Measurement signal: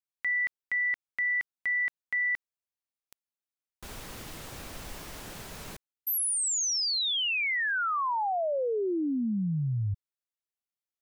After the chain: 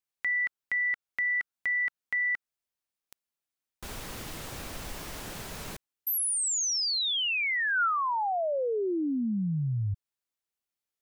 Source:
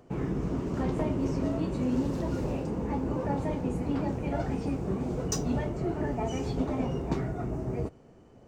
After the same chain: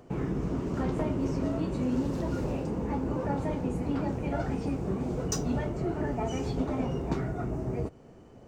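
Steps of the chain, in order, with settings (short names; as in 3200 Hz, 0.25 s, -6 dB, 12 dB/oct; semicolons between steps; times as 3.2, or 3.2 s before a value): dynamic EQ 1400 Hz, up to +5 dB, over -52 dBFS, Q 5.5; in parallel at -1 dB: compressor, threshold -37 dBFS; on the sum: gain -2.5 dB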